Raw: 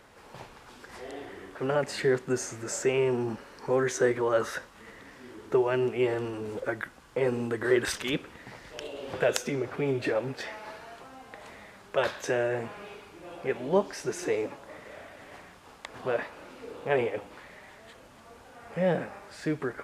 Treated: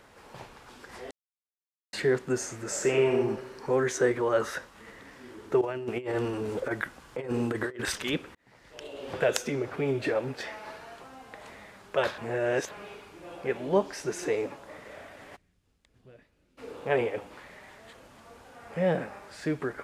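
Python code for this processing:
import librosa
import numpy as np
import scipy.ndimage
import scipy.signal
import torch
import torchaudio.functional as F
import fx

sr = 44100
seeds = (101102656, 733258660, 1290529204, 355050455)

y = fx.reverb_throw(x, sr, start_s=2.67, length_s=0.47, rt60_s=1.0, drr_db=2.0)
y = fx.over_compress(y, sr, threshold_db=-30.0, ratio=-0.5, at=(5.61, 7.82))
y = fx.tone_stack(y, sr, knobs='10-0-1', at=(15.35, 16.57), fade=0.02)
y = fx.edit(y, sr, fx.silence(start_s=1.11, length_s=0.82),
    fx.fade_in_span(start_s=8.35, length_s=0.74),
    fx.reverse_span(start_s=12.18, length_s=0.53), tone=tone)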